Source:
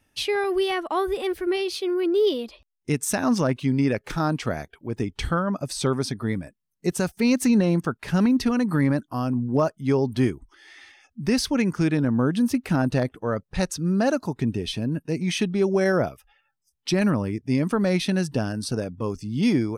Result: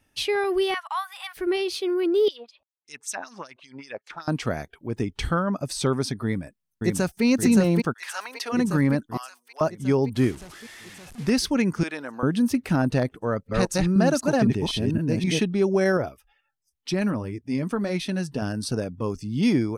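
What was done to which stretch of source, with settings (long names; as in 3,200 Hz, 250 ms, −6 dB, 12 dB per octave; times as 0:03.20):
0:00.74–0:01.37: Butterworth high-pass 840 Hz 48 dB per octave
0:02.28–0:04.28: auto-filter band-pass sine 5.2 Hz 660–6,900 Hz
0:06.24–0:07.24: delay throw 570 ms, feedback 65%, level −2.5 dB
0:07.92–0:08.52: high-pass filter 1,400 Hz → 450 Hz 24 dB per octave
0:09.17–0:09.61: Bessel high-pass filter 1,500 Hz, order 4
0:10.15–0:11.30: linear delta modulator 64 kbit/s, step −38.5 dBFS
0:11.83–0:12.23: high-pass filter 670 Hz
0:13.19–0:15.41: delay that plays each chunk backwards 256 ms, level −0.5 dB
0:15.97–0:18.42: flanger 1.5 Hz, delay 1.8 ms, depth 3.5 ms, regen −54%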